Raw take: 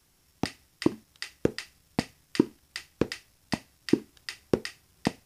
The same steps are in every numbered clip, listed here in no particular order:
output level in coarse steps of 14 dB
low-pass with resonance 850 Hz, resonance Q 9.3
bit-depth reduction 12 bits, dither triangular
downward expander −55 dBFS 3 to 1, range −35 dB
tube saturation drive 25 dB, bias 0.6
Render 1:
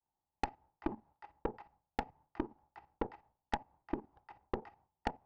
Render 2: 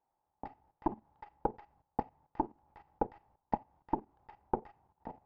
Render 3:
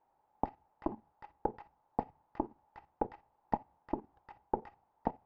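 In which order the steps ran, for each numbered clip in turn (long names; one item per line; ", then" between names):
output level in coarse steps, then bit-depth reduction, then downward expander, then low-pass with resonance, then tube saturation
downward expander, then tube saturation, then bit-depth reduction, then low-pass with resonance, then output level in coarse steps
output level in coarse steps, then tube saturation, then downward expander, then bit-depth reduction, then low-pass with resonance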